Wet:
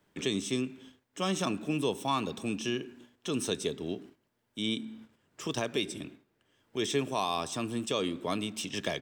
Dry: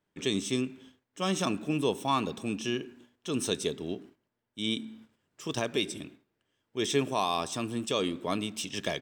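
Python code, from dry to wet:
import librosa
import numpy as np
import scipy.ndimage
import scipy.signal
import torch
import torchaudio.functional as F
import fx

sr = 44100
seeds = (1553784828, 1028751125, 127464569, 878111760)

y = fx.band_squash(x, sr, depth_pct=40)
y = y * librosa.db_to_amplitude(-1.5)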